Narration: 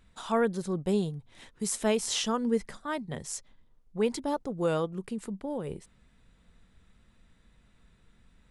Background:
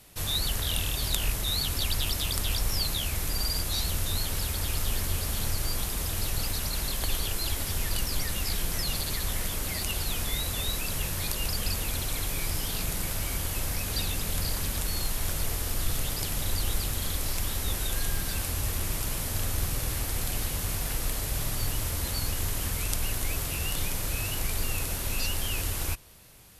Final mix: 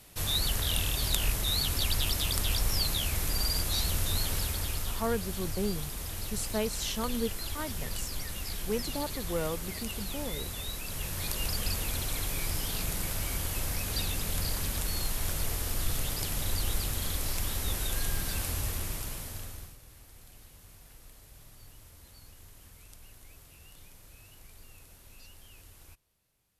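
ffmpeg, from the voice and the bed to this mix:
-filter_complex "[0:a]adelay=4700,volume=-5dB[a];[1:a]volume=4.5dB,afade=t=out:st=4.32:d=0.69:silence=0.473151,afade=t=in:st=10.84:d=0.56:silence=0.562341,afade=t=out:st=18.52:d=1.25:silence=0.0891251[b];[a][b]amix=inputs=2:normalize=0"

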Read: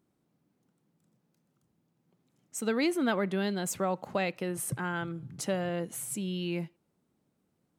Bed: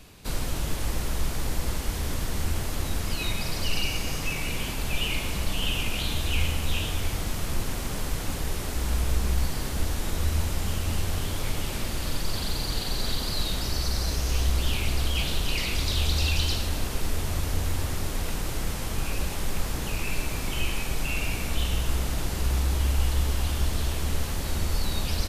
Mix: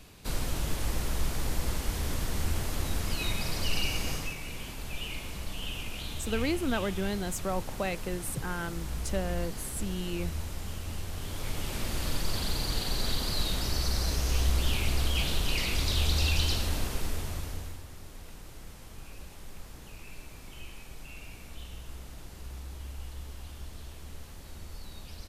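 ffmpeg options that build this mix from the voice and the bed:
-filter_complex "[0:a]adelay=3650,volume=-2dB[a];[1:a]volume=5dB,afade=t=out:st=4.11:d=0.25:silence=0.446684,afade=t=in:st=11.13:d=0.85:silence=0.421697,afade=t=out:st=16.74:d=1.08:silence=0.177828[b];[a][b]amix=inputs=2:normalize=0"

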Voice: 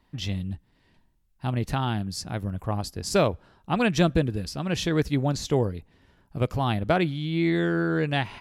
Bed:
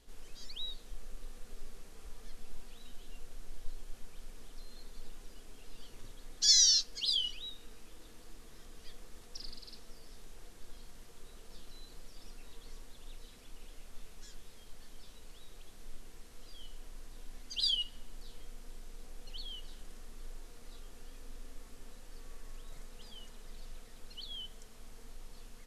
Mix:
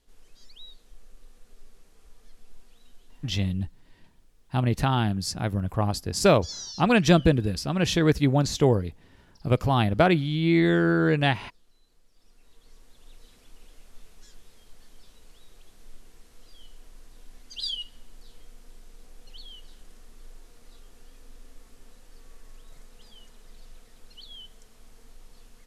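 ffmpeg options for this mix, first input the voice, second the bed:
-filter_complex "[0:a]adelay=3100,volume=3dB[a];[1:a]volume=8dB,afade=t=out:st=2.9:d=0.82:silence=0.375837,afade=t=in:st=12.11:d=1.18:silence=0.211349[b];[a][b]amix=inputs=2:normalize=0"

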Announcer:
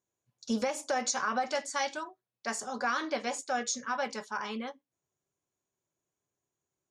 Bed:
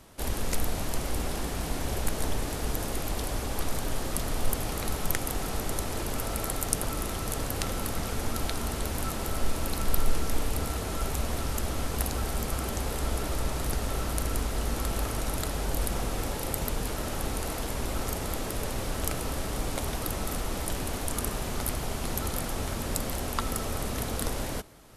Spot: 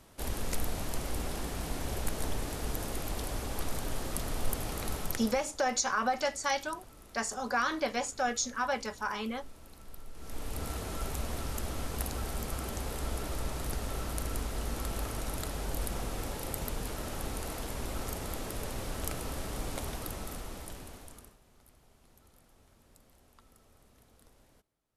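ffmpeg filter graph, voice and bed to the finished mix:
-filter_complex "[0:a]adelay=4700,volume=1dB[a];[1:a]volume=12.5dB,afade=t=out:st=4.96:d=0.54:silence=0.125893,afade=t=in:st=10.14:d=0.56:silence=0.141254,afade=t=out:st=19.78:d=1.59:silence=0.0530884[b];[a][b]amix=inputs=2:normalize=0"

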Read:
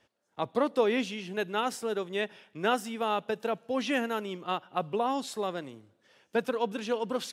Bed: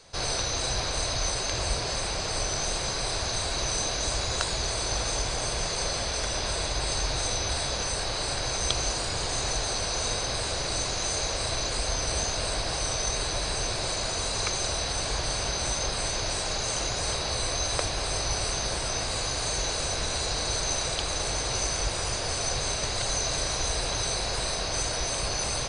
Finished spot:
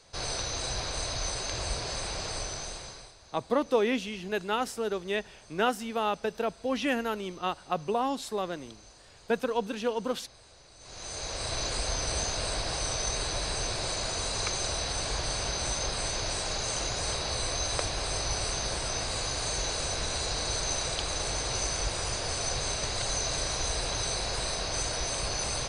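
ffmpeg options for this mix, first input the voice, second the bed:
-filter_complex "[0:a]adelay=2950,volume=0.5dB[a];[1:a]volume=18.5dB,afade=t=out:st=2.25:d=0.89:silence=0.0891251,afade=t=in:st=10.79:d=0.84:silence=0.0707946[b];[a][b]amix=inputs=2:normalize=0"

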